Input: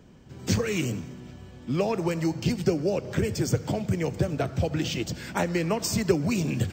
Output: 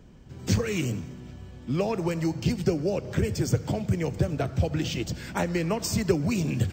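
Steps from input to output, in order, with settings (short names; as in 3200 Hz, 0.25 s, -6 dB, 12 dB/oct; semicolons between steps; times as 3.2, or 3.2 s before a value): low shelf 67 Hz +12 dB; gain -1.5 dB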